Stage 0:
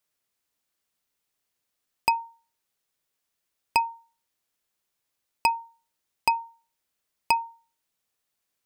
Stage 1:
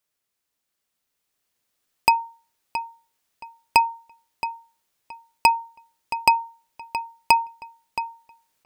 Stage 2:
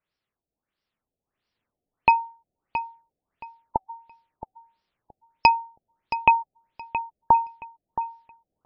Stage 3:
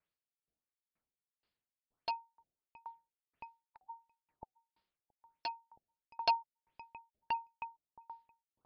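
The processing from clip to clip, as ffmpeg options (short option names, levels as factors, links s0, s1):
-filter_complex "[0:a]asplit=2[s0][s1];[s1]adelay=672,lowpass=f=4600:p=1,volume=0.282,asplit=2[s2][s3];[s3]adelay=672,lowpass=f=4600:p=1,volume=0.23,asplit=2[s4][s5];[s5]adelay=672,lowpass=f=4600:p=1,volume=0.23[s6];[s0][s2][s4][s6]amix=inputs=4:normalize=0,dynaudnorm=f=320:g=9:m=3.98"
-af "lowshelf=f=240:g=5.5,afftfilt=real='re*lt(b*sr/1024,760*pow(5900/760,0.5+0.5*sin(2*PI*1.5*pts/sr)))':imag='im*lt(b*sr/1024,760*pow(5900/760,0.5+0.5*sin(2*PI*1.5*pts/sr)))':win_size=1024:overlap=0.75"
-af "aresample=11025,aeval=exprs='0.251*(abs(mod(val(0)/0.251+3,4)-2)-1)':c=same,aresample=44100,aeval=exprs='val(0)*pow(10,-38*if(lt(mod(2.1*n/s,1),2*abs(2.1)/1000),1-mod(2.1*n/s,1)/(2*abs(2.1)/1000),(mod(2.1*n/s,1)-2*abs(2.1)/1000)/(1-2*abs(2.1)/1000))/20)':c=same,volume=0.841"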